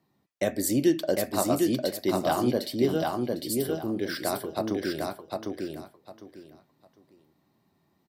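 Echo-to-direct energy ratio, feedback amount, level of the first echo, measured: -3.0 dB, 22%, -3.0 dB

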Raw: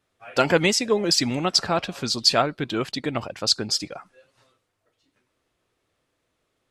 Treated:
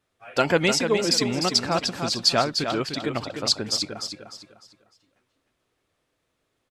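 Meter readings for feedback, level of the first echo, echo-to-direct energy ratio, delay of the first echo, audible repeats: 32%, -7.0 dB, -6.5 dB, 0.301 s, 3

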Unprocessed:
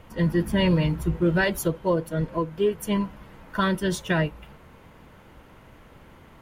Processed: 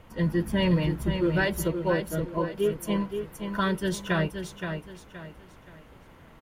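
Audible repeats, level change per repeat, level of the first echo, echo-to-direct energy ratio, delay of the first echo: 3, -9.5 dB, -7.0 dB, -6.5 dB, 0.522 s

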